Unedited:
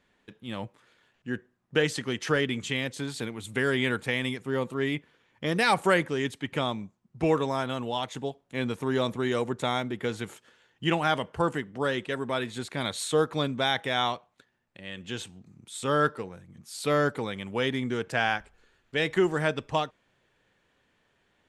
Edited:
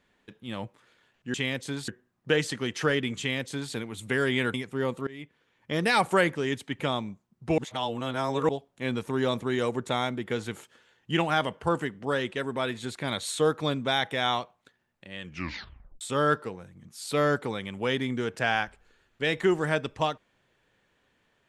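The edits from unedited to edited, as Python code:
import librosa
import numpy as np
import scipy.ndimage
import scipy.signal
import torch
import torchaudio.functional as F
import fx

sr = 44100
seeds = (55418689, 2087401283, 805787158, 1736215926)

y = fx.edit(x, sr, fx.duplicate(start_s=2.65, length_s=0.54, to_s=1.34),
    fx.cut(start_s=4.0, length_s=0.27),
    fx.fade_in_from(start_s=4.8, length_s=0.68, floor_db=-21.0),
    fx.reverse_span(start_s=7.31, length_s=0.91),
    fx.tape_stop(start_s=14.95, length_s=0.79), tone=tone)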